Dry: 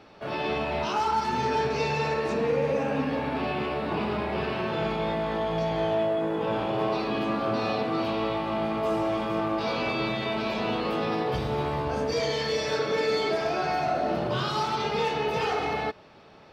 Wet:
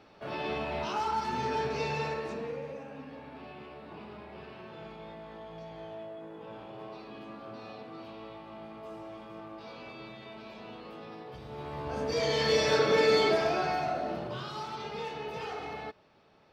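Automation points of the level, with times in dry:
0:02.01 −5.5 dB
0:02.88 −17.5 dB
0:11.37 −17.5 dB
0:11.93 −6.5 dB
0:12.52 +2 dB
0:13.21 +2 dB
0:14.43 −11 dB

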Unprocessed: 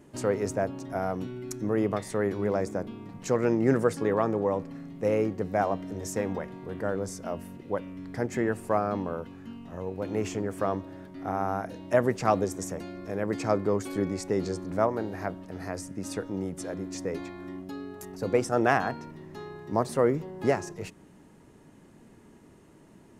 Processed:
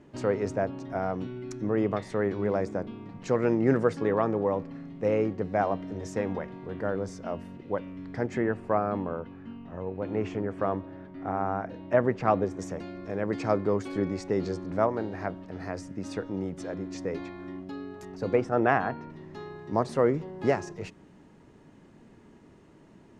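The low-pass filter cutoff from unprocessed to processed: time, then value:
4,400 Hz
from 0:08.38 2,600 Hz
from 0:12.59 4,700 Hz
from 0:18.35 2,600 Hz
from 0:19.10 5,600 Hz

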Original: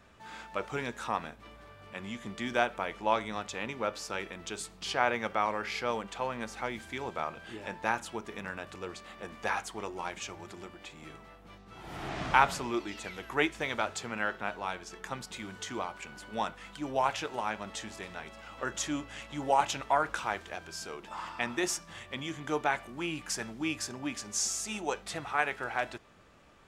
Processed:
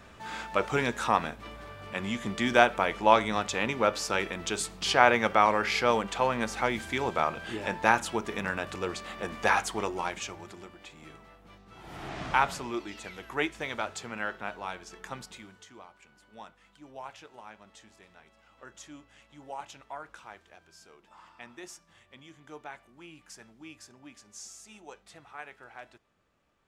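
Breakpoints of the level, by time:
0:09.79 +7.5 dB
0:10.65 −1.5 dB
0:15.23 −1.5 dB
0:15.70 −14 dB

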